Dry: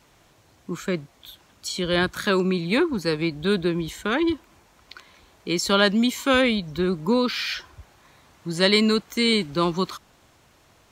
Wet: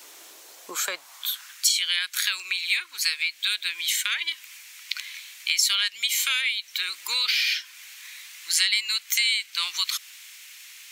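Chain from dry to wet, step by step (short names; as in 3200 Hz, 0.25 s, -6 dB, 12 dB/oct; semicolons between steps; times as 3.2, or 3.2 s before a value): high-pass sweep 350 Hz -> 2200 Hz, 0.36–1.74; compressor 4:1, threshold -35 dBFS, peak gain reduction 18.5 dB; tilt +4.5 dB/oct; 2.51–3.56 short-mantissa float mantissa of 6-bit; gain +4.5 dB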